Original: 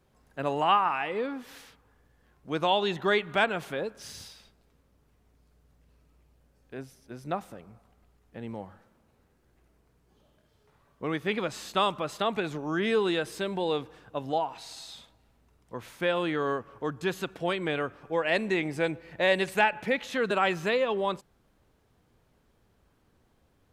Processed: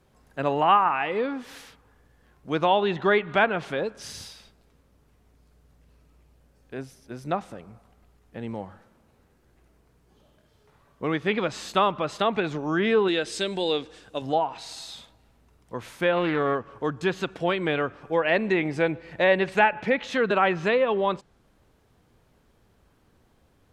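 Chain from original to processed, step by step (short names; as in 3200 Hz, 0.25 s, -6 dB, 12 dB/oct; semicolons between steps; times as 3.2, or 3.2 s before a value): 13.08–14.22 ten-band EQ 125 Hz -9 dB, 1000 Hz -7 dB, 4000 Hz +5 dB, 8000 Hz +9 dB; treble ducked by the level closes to 2400 Hz, closed at -22 dBFS; 16.12–16.55 Doppler distortion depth 0.19 ms; gain +4.5 dB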